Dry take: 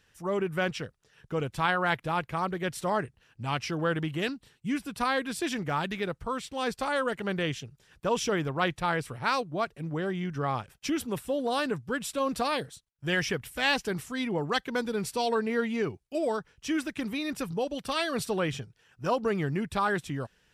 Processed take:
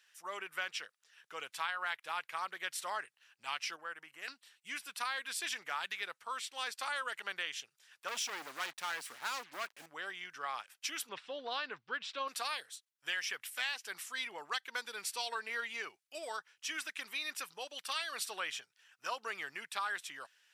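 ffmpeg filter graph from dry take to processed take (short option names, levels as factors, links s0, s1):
-filter_complex "[0:a]asettb=1/sr,asplit=3[s0][s1][s2];[s0]atrim=end=3.764[s3];[s1]atrim=start=3.76:end=4.28,asetpts=PTS-STARTPTS,afade=t=in:d=0.004:c=qsin,afade=t=out:st=0.516:d=0.004:c=qsin,agate=range=0.447:threshold=0.0398:ratio=16:release=100:detection=peak,equalizer=f=3500:w=2.6:g=-14.5,acompressor=threshold=0.0251:ratio=2.5:attack=3.2:release=140:knee=1:detection=peak[s4];[s2]atrim=start=4.276[s5];[s3][s4]acrossfade=d=0.004:c1=hsin:c2=qsin[s6];[s6][s5]acrossfade=d=0.004:c1=qsin:c2=hsin,asettb=1/sr,asplit=3[s7][s8][s9];[s7]atrim=end=8.084[s10];[s8]atrim=start=8.08:end=9.86,asetpts=PTS-STARTPTS,afade=t=in:d=0.004:c=qsin,afade=t=out:st=1.776:d=0.004:c=qsin,equalizer=f=250:t=o:w=1.3:g=11.5,asoftclip=type=hard:threshold=0.0447,acrusher=bits=7:mix=0:aa=0.5[s11];[s9]atrim=start=9.856[s12];[s10][s11]acrossfade=d=0.004:c1=hsin:c2=qsin[s13];[s13][s12]acrossfade=d=0.004:c1=qsin:c2=hsin,asettb=1/sr,asplit=3[s14][s15][s16];[s14]atrim=end=11.094[s17];[s15]atrim=start=11.09:end=12.28,asetpts=PTS-STARTPTS,afade=t=in:d=0.004:c=qsin,afade=t=out:st=1.186:d=0.004:c=qsin,lowpass=f=4500:w=0.5412,lowpass=f=4500:w=1.3066,lowshelf=f=370:g=10[s18];[s16]atrim=start=12.276[s19];[s17][s18]acrossfade=d=0.004:c1=hsin:c2=qsin[s20];[s20][s19]acrossfade=d=0.004:c1=qsin:c2=hsin,highpass=1400,acompressor=threshold=0.0224:ratio=6"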